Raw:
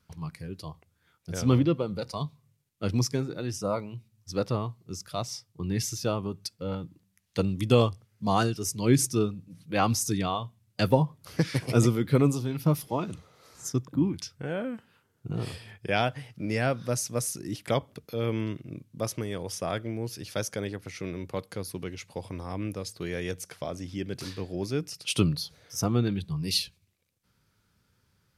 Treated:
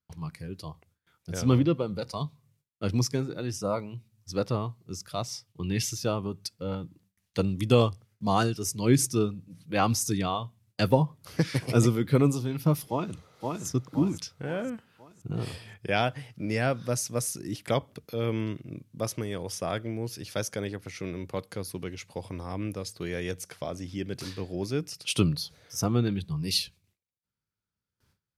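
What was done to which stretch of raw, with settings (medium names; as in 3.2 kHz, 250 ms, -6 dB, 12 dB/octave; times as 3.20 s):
5.47–5.91 s: peaking EQ 2.9 kHz +9 dB 0.81 oct
12.88–13.65 s: echo throw 520 ms, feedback 45%, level -3 dB
whole clip: gate with hold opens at -58 dBFS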